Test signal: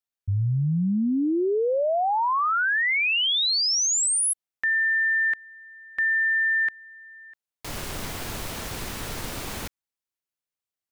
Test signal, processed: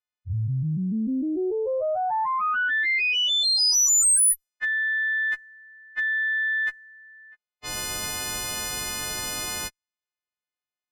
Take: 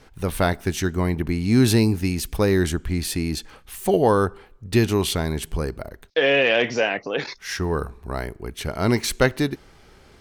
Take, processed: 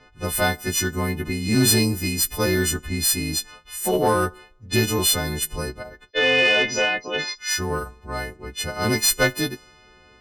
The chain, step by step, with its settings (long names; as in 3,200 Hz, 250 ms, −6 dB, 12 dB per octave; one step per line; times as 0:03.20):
every partial snapped to a pitch grid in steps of 3 semitones
low-pass that shuts in the quiet parts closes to 2,800 Hz, open at −18.5 dBFS
harmonic generator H 2 −18 dB, 5 −26 dB, 6 −30 dB, 7 −38 dB, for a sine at −2 dBFS
level −3.5 dB